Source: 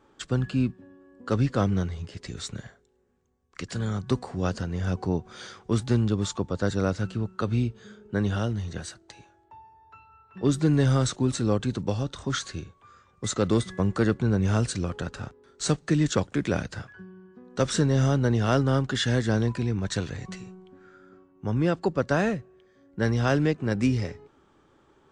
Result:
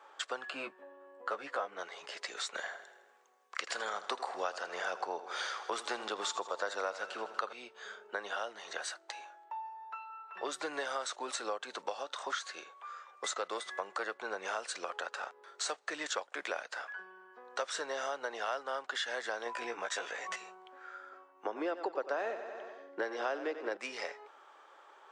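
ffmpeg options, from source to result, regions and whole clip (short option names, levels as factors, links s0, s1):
-filter_complex "[0:a]asettb=1/sr,asplit=3[s0][s1][s2];[s0]atrim=end=0.504[s3];[s1]atrim=start=0.5:end=1.79,asetpts=PTS-STARTPTS,afade=t=in:d=0.004:c=qsin,afade=t=out:st=1.286:d=0.004:c=qsin,equalizer=f=5400:t=o:w=1.5:g=-8.5,asplit=2[s4][s5];[s5]adelay=14,volume=0.631[s6];[s4][s6]amix=inputs=2:normalize=0,atrim=end_sample=56889[s7];[s2]atrim=start=1.786[s8];[s3][s7]acrossfade=d=0.004:c1=hsin:c2=qsin[s9];[s9][s8]acrossfade=d=0.004:c1=qsin:c2=hsin,asettb=1/sr,asplit=3[s10][s11][s12];[s10]atrim=end=2.544[s13];[s11]atrim=start=2.54:end=7.53,asetpts=PTS-STARTPTS,afade=t=in:d=0.004:c=qsin,afade=t=out:st=4.986:d=0.004:c=qsin,acontrast=78,aecho=1:1:80|160|240|320|400|480:0.168|0.0974|0.0565|0.0328|0.019|0.011,atrim=end_sample=220059[s14];[s12]atrim=start=7.526[s15];[s13][s14]acrossfade=d=0.004:c1=hsin:c2=qsin[s16];[s16][s15]acrossfade=d=0.004:c1=qsin:c2=hsin,asettb=1/sr,asplit=3[s17][s18][s19];[s17]atrim=end=19.444[s20];[s18]atrim=start=19.44:end=20.36,asetpts=PTS-STARTPTS,afade=t=in:d=0.004:c=qsin,afade=t=out:st=0.916:d=0.004:c=qsin,bandreject=f=4200:w=5.3,asplit=2[s21][s22];[s22]adelay=17,volume=0.794[s23];[s21][s23]amix=inputs=2:normalize=0,atrim=end_sample=40572[s24];[s19]atrim=start=20.356[s25];[s20][s24]acrossfade=d=0.004:c1=hsin:c2=qsin[s26];[s26][s25]acrossfade=d=0.004:c1=qsin:c2=hsin,asettb=1/sr,asplit=3[s27][s28][s29];[s27]atrim=end=21.454[s30];[s28]atrim=start=21.45:end=23.77,asetpts=PTS-STARTPTS,afade=t=in:d=0.004:c=qsin,afade=t=out:st=2.316:d=0.004:c=qsin,highpass=130,lowpass=6600,equalizer=f=320:t=o:w=1.3:g=14,aecho=1:1:93|186|279|372|465|558:0.224|0.121|0.0653|0.0353|0.019|0.0103,atrim=end_sample=102312[s31];[s29]atrim=start=23.766[s32];[s30][s31]acrossfade=d=0.004:c1=hsin:c2=qsin[s33];[s33][s32]acrossfade=d=0.004:c1=qsin:c2=hsin,highpass=f=620:w=0.5412,highpass=f=620:w=1.3066,highshelf=f=3300:g=-9,acompressor=threshold=0.00562:ratio=4,volume=2.82"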